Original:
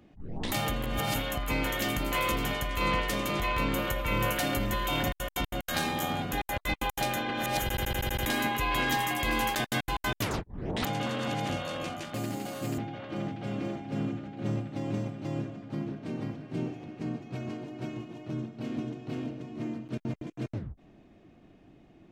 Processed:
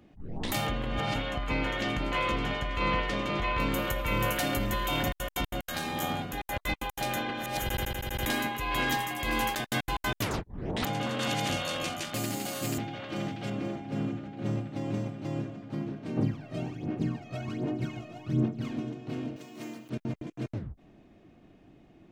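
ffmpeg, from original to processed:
-filter_complex "[0:a]asettb=1/sr,asplit=3[s0][s1][s2];[s0]atrim=end=0.674[s3];[s1]atrim=start=0.67:end=3.6,asetpts=PTS-STARTPTS,afade=t=in:d=0.004:c=qsin,afade=t=out:st=2.926:d=0.004:c=qsin,lowpass=4100[s4];[s2]atrim=start=3.596[s5];[s3][s4]acrossfade=d=0.004:c1=hsin:c2=qsin[s6];[s6][s5]acrossfade=d=0.004:c1=qsin:c2=hsin,asettb=1/sr,asplit=3[s7][s8][s9];[s7]atrim=end=5.524[s10];[s8]atrim=start=5.52:end=9.67,asetpts=PTS-STARTPTS,afade=t=in:d=0.004:c=qsin,afade=t=out:st=4.146:d=0.004:c=qsin,tremolo=f=1.8:d=0.4[s11];[s9]atrim=start=9.666[s12];[s10][s11]acrossfade=d=0.004:c1=hsin:c2=qsin[s13];[s13][s12]acrossfade=d=0.004:c1=qsin:c2=hsin,asettb=1/sr,asplit=3[s14][s15][s16];[s14]atrim=end=11.194[s17];[s15]atrim=start=11.19:end=13.5,asetpts=PTS-STARTPTS,afade=t=in:d=0.004:c=qsin,afade=t=out:st=2.306:d=0.004:c=qsin,highshelf=f=2200:g=9.5[s18];[s16]atrim=start=13.496[s19];[s17][s18]acrossfade=d=0.004:c1=hsin:c2=qsin[s20];[s20][s19]acrossfade=d=0.004:c1=qsin:c2=hsin,asplit=3[s21][s22][s23];[s21]afade=t=out:st=16.16:d=0.02[s24];[s22]aphaser=in_gain=1:out_gain=1:delay=1.6:decay=0.71:speed=1.3:type=sinusoidal,afade=t=in:st=16.16:d=0.02,afade=t=out:st=18.72:d=0.02[s25];[s23]afade=t=in:st=18.72:d=0.02[s26];[s24][s25][s26]amix=inputs=3:normalize=0,asettb=1/sr,asplit=3[s27][s28][s29];[s27]atrim=end=19.364[s30];[s28]atrim=start=19.36:end=19.9,asetpts=PTS-STARTPTS,afade=t=in:d=0.004:c=qsin,afade=t=out:st=0.536:d=0.004:c=qsin,aemphasis=mode=production:type=riaa[s31];[s29]atrim=start=19.896[s32];[s30][s31]acrossfade=d=0.004:c1=hsin:c2=qsin[s33];[s33][s32]acrossfade=d=0.004:c1=qsin:c2=hsin"

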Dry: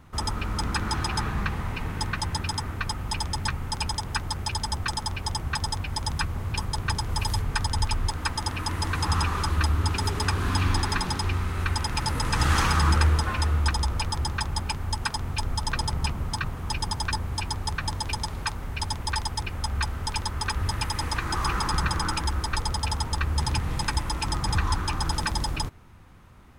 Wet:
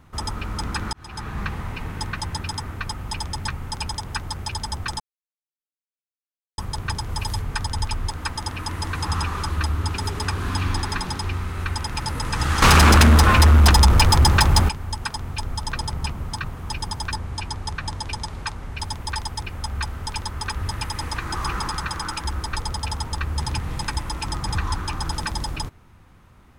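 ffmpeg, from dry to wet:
-filter_complex "[0:a]asettb=1/sr,asplit=3[s0][s1][s2];[s0]atrim=end=12.624[s3];[s1]atrim=start=12.62:end=14.69,asetpts=PTS-STARTPTS,afade=t=in:d=0.004:c=qsin,afade=t=out:st=2.066:d=0.004:c=qsin,aeval=exprs='0.376*sin(PI/2*3.55*val(0)/0.376)':c=same[s4];[s2]atrim=start=14.686[s5];[s3][s4]acrossfade=d=0.004:c1=hsin:c2=qsin[s6];[s6][s5]acrossfade=d=0.004:c1=qsin:c2=hsin,asettb=1/sr,asplit=3[s7][s8][s9];[s7]atrim=end=17.164[s10];[s8]atrim=start=17.16:end=18.78,asetpts=PTS-STARTPTS,afade=t=in:d=0.004:c=qsin,afade=t=out:st=1.616:d=0.004:c=qsin,lowpass=10000[s11];[s9]atrim=start=18.776[s12];[s10][s11]acrossfade=d=0.004:c1=hsin:c2=qsin[s13];[s13][s12]acrossfade=d=0.004:c1=qsin:c2=hsin,asettb=1/sr,asplit=3[s14][s15][s16];[s14]atrim=end=21.704[s17];[s15]atrim=start=21.7:end=22.25,asetpts=PTS-STARTPTS,afade=t=in:d=0.004:c=qsin,afade=t=out:st=0.546:d=0.004:c=qsin,lowshelf=f=430:g=-5.5[s18];[s16]atrim=start=22.246[s19];[s17][s18]acrossfade=d=0.004:c1=hsin:c2=qsin[s20];[s20][s19]acrossfade=d=0.004:c1=qsin:c2=hsin,asplit=4[s21][s22][s23][s24];[s21]atrim=end=0.93,asetpts=PTS-STARTPTS,afade=t=out:st=0.926:d=0.004:c=hsin[s25];[s22]atrim=start=0.93:end=5,asetpts=PTS-STARTPTS,afade=t=in:d=0.51,afade=t=out:st=4.066:d=0.004:c=hsin[s26];[s23]atrim=start=5:end=6.58,asetpts=PTS-STARTPTS,volume=0[s27];[s24]atrim=start=6.58,asetpts=PTS-STARTPTS,afade=t=in:d=0.004:c=hsin[s28];[s25][s26][s27][s28]concat=n=4:v=0:a=1"

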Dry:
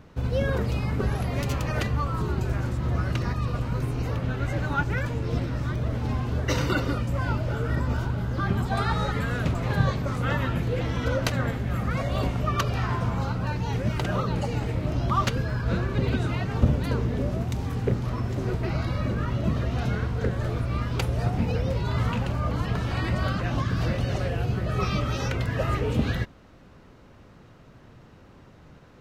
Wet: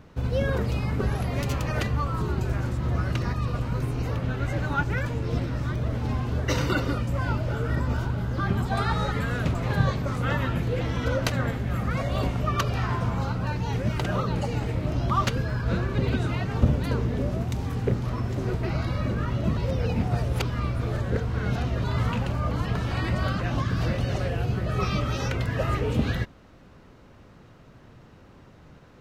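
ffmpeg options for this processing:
-filter_complex "[0:a]asplit=3[s0][s1][s2];[s0]atrim=end=19.572[s3];[s1]atrim=start=19.568:end=21.842,asetpts=PTS-STARTPTS,areverse[s4];[s2]atrim=start=21.838[s5];[s3][s4]acrossfade=d=0.004:c1=hsin:c2=hsin[s6];[s6][s5]acrossfade=d=0.004:c1=hsin:c2=hsin"

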